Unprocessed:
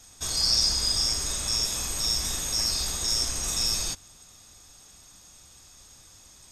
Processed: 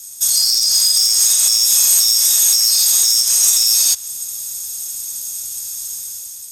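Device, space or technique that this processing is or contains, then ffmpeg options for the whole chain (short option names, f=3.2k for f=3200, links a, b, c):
FM broadcast chain: -filter_complex "[0:a]highpass=46,dynaudnorm=f=170:g=7:m=8.5dB,acrossover=split=490|6200[a][b][c];[a]acompressor=threshold=-44dB:ratio=4[d];[b]acompressor=threshold=-23dB:ratio=4[e];[c]acompressor=threshold=-36dB:ratio=4[f];[d][e][f]amix=inputs=3:normalize=0,aemphasis=mode=production:type=75fm,alimiter=limit=-8.5dB:level=0:latency=1:release=108,asoftclip=type=hard:threshold=-12.5dB,lowpass=f=15k:w=0.5412,lowpass=f=15k:w=1.3066,aemphasis=mode=production:type=75fm,volume=-4dB"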